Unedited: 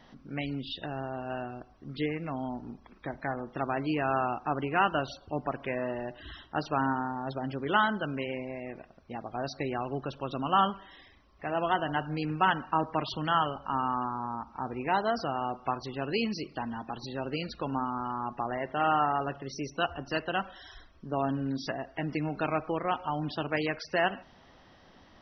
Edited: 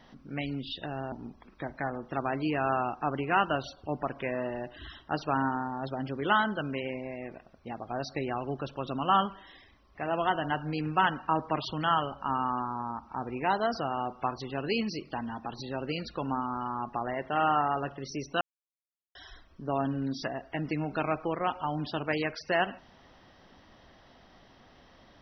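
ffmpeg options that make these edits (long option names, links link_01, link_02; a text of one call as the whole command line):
ffmpeg -i in.wav -filter_complex "[0:a]asplit=4[link_01][link_02][link_03][link_04];[link_01]atrim=end=1.122[link_05];[link_02]atrim=start=2.558:end=19.85,asetpts=PTS-STARTPTS,afade=type=out:start_time=17.288:duration=0.004:curve=hsin[link_06];[link_03]atrim=start=19.85:end=20.59,asetpts=PTS-STARTPTS,volume=0[link_07];[link_04]atrim=start=20.59,asetpts=PTS-STARTPTS,afade=type=in:duration=0.004:curve=hsin[link_08];[link_06][link_07][link_08]concat=n=3:v=0:a=1[link_09];[link_05][link_09]acrossfade=duration=0.004:curve1=hsin:curve2=hsin" out.wav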